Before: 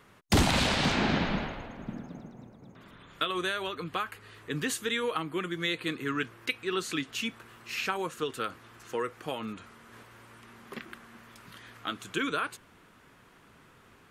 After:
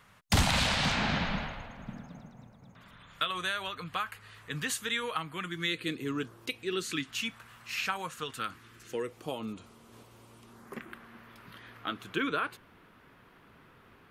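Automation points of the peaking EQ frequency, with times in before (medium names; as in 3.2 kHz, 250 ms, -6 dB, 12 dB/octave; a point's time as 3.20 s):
peaking EQ -12.5 dB 1 oct
5.36 s 350 Hz
6.31 s 2.4 kHz
7.24 s 360 Hz
8.30 s 360 Hz
9.22 s 1.7 kHz
10.45 s 1.7 kHz
11.01 s 7.5 kHz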